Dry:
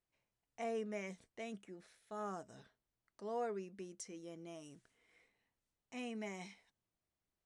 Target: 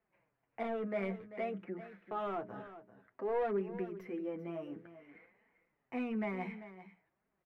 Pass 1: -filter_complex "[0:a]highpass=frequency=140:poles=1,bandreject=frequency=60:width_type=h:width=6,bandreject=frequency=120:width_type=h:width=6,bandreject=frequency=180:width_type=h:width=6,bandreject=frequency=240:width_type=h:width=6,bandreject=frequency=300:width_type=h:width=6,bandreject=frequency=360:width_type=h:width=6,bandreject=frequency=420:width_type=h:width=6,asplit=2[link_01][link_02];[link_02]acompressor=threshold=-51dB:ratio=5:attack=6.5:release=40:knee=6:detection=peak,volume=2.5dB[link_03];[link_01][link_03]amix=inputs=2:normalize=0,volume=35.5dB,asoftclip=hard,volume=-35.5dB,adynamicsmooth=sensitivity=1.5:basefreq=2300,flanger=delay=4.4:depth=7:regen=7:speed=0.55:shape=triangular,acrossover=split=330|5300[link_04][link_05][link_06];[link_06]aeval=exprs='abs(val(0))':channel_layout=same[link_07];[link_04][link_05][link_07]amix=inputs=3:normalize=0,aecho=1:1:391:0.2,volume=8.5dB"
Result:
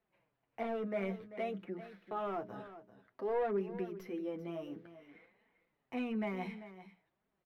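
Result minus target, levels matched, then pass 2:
4,000 Hz band +3.5 dB
-filter_complex "[0:a]highpass=frequency=140:poles=1,highshelf=frequency=2900:width_type=q:width=1.5:gain=-9,bandreject=frequency=60:width_type=h:width=6,bandreject=frequency=120:width_type=h:width=6,bandreject=frequency=180:width_type=h:width=6,bandreject=frequency=240:width_type=h:width=6,bandreject=frequency=300:width_type=h:width=6,bandreject=frequency=360:width_type=h:width=6,bandreject=frequency=420:width_type=h:width=6,asplit=2[link_01][link_02];[link_02]acompressor=threshold=-51dB:ratio=5:attack=6.5:release=40:knee=6:detection=peak,volume=2.5dB[link_03];[link_01][link_03]amix=inputs=2:normalize=0,volume=35.5dB,asoftclip=hard,volume=-35.5dB,adynamicsmooth=sensitivity=1.5:basefreq=2300,flanger=delay=4.4:depth=7:regen=7:speed=0.55:shape=triangular,acrossover=split=330|5300[link_04][link_05][link_06];[link_06]aeval=exprs='abs(val(0))':channel_layout=same[link_07];[link_04][link_05][link_07]amix=inputs=3:normalize=0,aecho=1:1:391:0.2,volume=8.5dB"

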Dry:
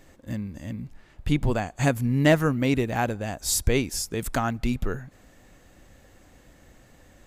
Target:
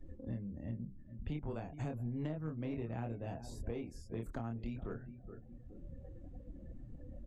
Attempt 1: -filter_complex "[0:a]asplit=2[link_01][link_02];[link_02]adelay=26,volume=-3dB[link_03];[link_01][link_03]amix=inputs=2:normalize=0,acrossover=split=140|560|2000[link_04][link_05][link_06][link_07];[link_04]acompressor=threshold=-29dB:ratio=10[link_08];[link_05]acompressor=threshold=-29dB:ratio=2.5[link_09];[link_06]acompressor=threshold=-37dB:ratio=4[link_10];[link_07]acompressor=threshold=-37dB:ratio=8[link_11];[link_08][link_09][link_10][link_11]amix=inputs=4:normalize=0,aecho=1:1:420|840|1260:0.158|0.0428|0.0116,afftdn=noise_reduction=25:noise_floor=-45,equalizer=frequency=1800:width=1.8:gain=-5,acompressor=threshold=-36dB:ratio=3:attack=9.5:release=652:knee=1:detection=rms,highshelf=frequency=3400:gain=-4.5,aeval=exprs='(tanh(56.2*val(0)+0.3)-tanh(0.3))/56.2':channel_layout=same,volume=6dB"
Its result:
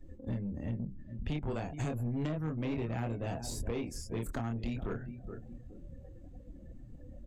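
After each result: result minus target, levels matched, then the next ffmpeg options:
8,000 Hz band +9.0 dB; downward compressor: peak gain reduction −7 dB
-filter_complex "[0:a]asplit=2[link_01][link_02];[link_02]adelay=26,volume=-3dB[link_03];[link_01][link_03]amix=inputs=2:normalize=0,acrossover=split=140|560|2000[link_04][link_05][link_06][link_07];[link_04]acompressor=threshold=-29dB:ratio=10[link_08];[link_05]acompressor=threshold=-29dB:ratio=2.5[link_09];[link_06]acompressor=threshold=-37dB:ratio=4[link_10];[link_07]acompressor=threshold=-37dB:ratio=8[link_11];[link_08][link_09][link_10][link_11]amix=inputs=4:normalize=0,aecho=1:1:420|840|1260:0.158|0.0428|0.0116,afftdn=noise_reduction=25:noise_floor=-45,equalizer=frequency=1800:width=1.8:gain=-5,acompressor=threshold=-36dB:ratio=3:attack=9.5:release=652:knee=1:detection=rms,highshelf=frequency=3400:gain=-15,aeval=exprs='(tanh(56.2*val(0)+0.3)-tanh(0.3))/56.2':channel_layout=same,volume=6dB"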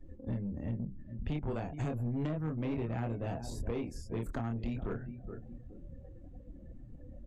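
downward compressor: peak gain reduction −7 dB
-filter_complex "[0:a]asplit=2[link_01][link_02];[link_02]adelay=26,volume=-3dB[link_03];[link_01][link_03]amix=inputs=2:normalize=0,acrossover=split=140|560|2000[link_04][link_05][link_06][link_07];[link_04]acompressor=threshold=-29dB:ratio=10[link_08];[link_05]acompressor=threshold=-29dB:ratio=2.5[link_09];[link_06]acompressor=threshold=-37dB:ratio=4[link_10];[link_07]acompressor=threshold=-37dB:ratio=8[link_11];[link_08][link_09][link_10][link_11]amix=inputs=4:normalize=0,aecho=1:1:420|840|1260:0.158|0.0428|0.0116,afftdn=noise_reduction=25:noise_floor=-45,equalizer=frequency=1800:width=1.8:gain=-5,acompressor=threshold=-46.5dB:ratio=3:attack=9.5:release=652:knee=1:detection=rms,highshelf=frequency=3400:gain=-15,aeval=exprs='(tanh(56.2*val(0)+0.3)-tanh(0.3))/56.2':channel_layout=same,volume=6dB"

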